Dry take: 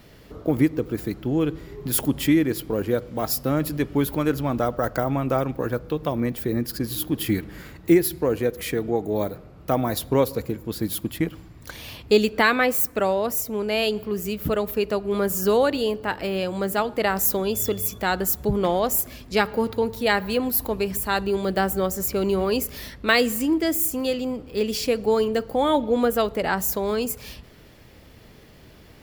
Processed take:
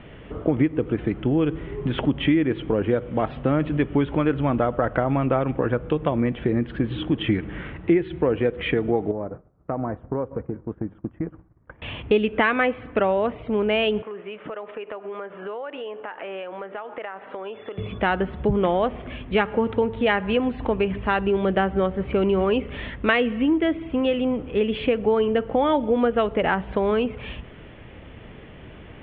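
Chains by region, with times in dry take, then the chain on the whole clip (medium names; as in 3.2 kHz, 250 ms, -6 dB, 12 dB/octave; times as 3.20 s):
9.11–11.82 s: low-pass 1.5 kHz 24 dB/octave + compression 4:1, threshold -30 dBFS + expander -33 dBFS
14.02–17.78 s: band-pass 570–2200 Hz + compression 8:1, threshold -36 dBFS
whole clip: steep low-pass 3.3 kHz 72 dB/octave; compression 2.5:1, threshold -26 dBFS; trim +6.5 dB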